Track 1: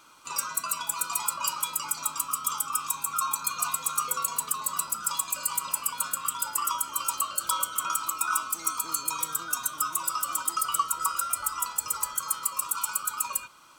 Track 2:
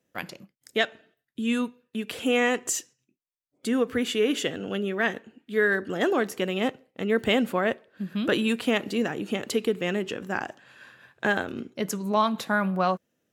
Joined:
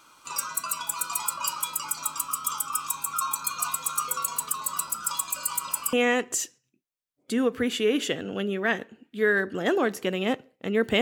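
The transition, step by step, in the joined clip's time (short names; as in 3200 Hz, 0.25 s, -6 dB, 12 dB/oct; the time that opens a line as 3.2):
track 1
5.93 switch to track 2 from 2.28 s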